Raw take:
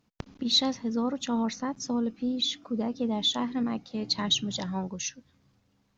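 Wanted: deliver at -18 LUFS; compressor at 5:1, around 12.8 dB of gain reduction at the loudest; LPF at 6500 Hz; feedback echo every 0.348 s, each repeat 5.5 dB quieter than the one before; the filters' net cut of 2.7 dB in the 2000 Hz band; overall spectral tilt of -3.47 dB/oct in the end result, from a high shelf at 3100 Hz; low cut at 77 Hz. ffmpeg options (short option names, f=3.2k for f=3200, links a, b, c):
-af "highpass=77,lowpass=6.5k,equalizer=f=2k:t=o:g=-6.5,highshelf=f=3.1k:g=7,acompressor=threshold=-32dB:ratio=5,aecho=1:1:348|696|1044|1392|1740|2088|2436:0.531|0.281|0.149|0.079|0.0419|0.0222|0.0118,volume=16.5dB"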